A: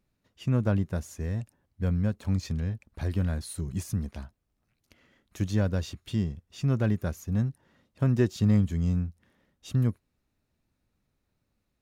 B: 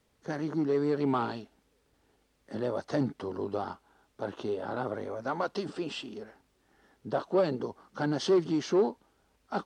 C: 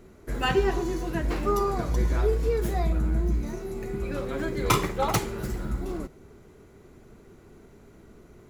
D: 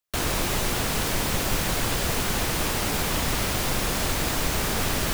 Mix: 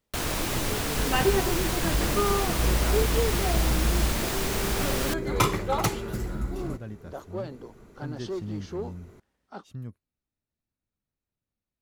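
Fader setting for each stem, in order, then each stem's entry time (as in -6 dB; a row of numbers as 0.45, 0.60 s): -13.5, -9.0, -0.5, -3.5 dB; 0.00, 0.00, 0.70, 0.00 s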